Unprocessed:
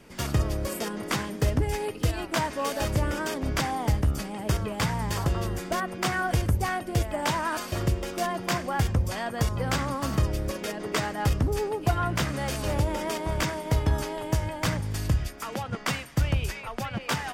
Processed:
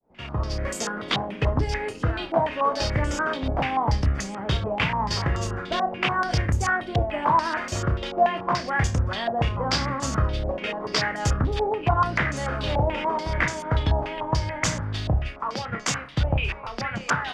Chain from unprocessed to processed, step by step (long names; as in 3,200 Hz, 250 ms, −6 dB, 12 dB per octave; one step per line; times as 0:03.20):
fade in at the beginning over 0.62 s
flutter between parallel walls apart 5.2 metres, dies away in 0.21 s
low-pass on a step sequencer 6.9 Hz 760–6,800 Hz